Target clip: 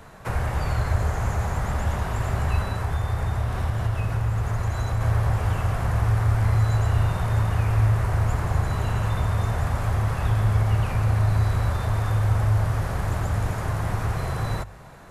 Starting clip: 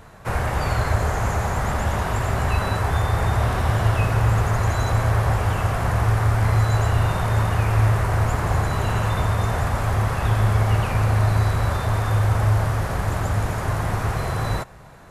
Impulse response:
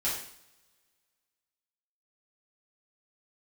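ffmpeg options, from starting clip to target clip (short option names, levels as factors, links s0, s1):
-filter_complex "[0:a]acrossover=split=150[s0][s1];[s1]acompressor=threshold=0.0316:ratio=4[s2];[s0][s2]amix=inputs=2:normalize=0,bandreject=f=50:t=h:w=6,bandreject=f=100:t=h:w=6,asettb=1/sr,asplit=3[s3][s4][s5];[s3]atrim=end=2.604[s6];[s4]atrim=start=2.6:end=5.01,asetpts=PTS-STARTPTS,afade=t=in:d=0.004:c=qsin,afade=t=out:st=2.406:d=0.004:c=qsin,acompressor=threshold=0.0794:ratio=2.5[s7];[s5]atrim=start=5.006[s8];[s6][s7]acrossfade=d=0.004:c1=hsin:c2=qsin[s9];[s9][s8]acrossfade=d=0.004:c1=qsin:c2=hsin"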